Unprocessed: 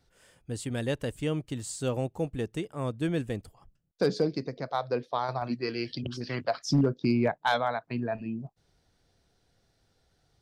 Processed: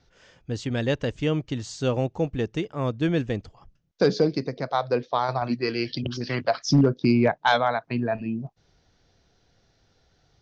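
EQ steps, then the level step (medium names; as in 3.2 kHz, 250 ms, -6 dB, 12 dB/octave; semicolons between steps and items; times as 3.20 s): elliptic low-pass 6.3 kHz, stop band 60 dB; +6.5 dB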